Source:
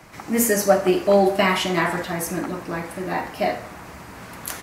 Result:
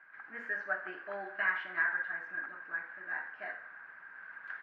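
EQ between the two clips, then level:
resonant band-pass 1,600 Hz, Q 17
high-frequency loss of the air 330 metres
+7.0 dB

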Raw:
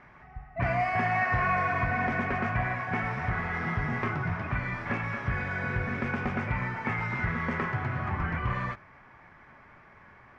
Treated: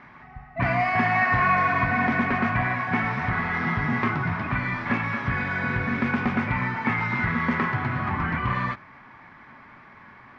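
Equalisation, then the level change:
graphic EQ with 10 bands 125 Hz +4 dB, 250 Hz +11 dB, 1,000 Hz +8 dB, 2,000 Hz +5 dB, 4,000 Hz +11 dB
−2.5 dB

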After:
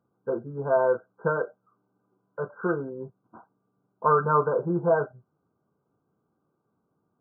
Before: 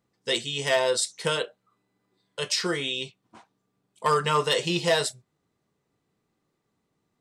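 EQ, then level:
high-pass filter 81 Hz
linear-phase brick-wall low-pass 1,600 Hz
+2.0 dB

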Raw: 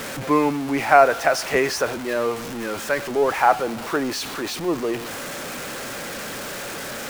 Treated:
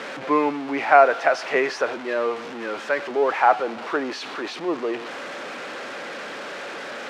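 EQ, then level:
band-pass filter 310–3,500 Hz
0.0 dB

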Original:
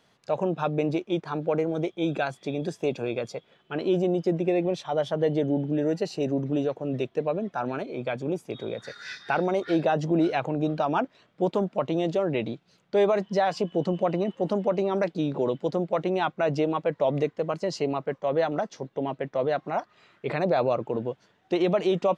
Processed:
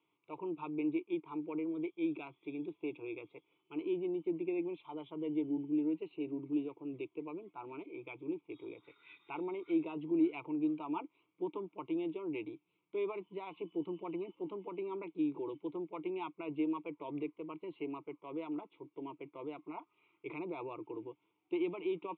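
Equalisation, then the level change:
formant filter u
Butterworth low-pass 3,800 Hz 96 dB per octave
phaser with its sweep stopped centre 1,200 Hz, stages 8
+4.0 dB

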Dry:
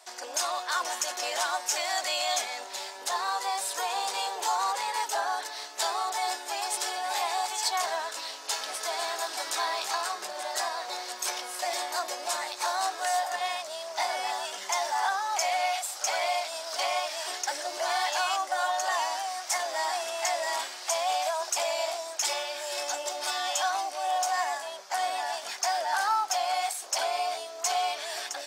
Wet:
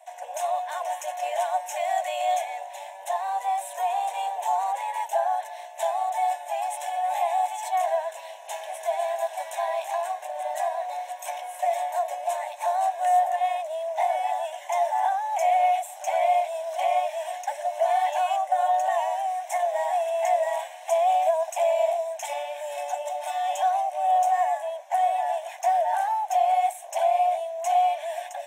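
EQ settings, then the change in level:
high-pass with resonance 660 Hz, resonance Q 4.9
phaser with its sweep stopped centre 1,300 Hz, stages 6
−3.5 dB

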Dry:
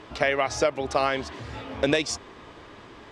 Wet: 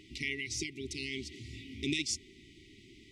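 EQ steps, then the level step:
linear-phase brick-wall band-stop 410–1,900 Hz
high-shelf EQ 5,500 Hz +7 dB
−7.5 dB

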